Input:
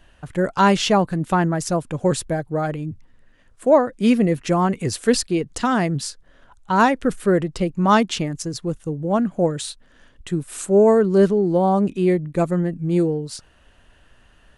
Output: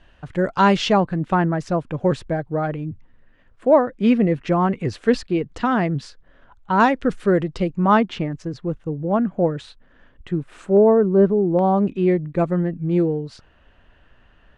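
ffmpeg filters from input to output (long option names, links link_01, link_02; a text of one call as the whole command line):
ffmpeg -i in.wav -af "asetnsamples=nb_out_samples=441:pad=0,asendcmd='1 lowpass f 2900;6.8 lowpass f 4600;7.77 lowpass f 2300;10.77 lowpass f 1200;11.59 lowpass f 2900',lowpass=4600" out.wav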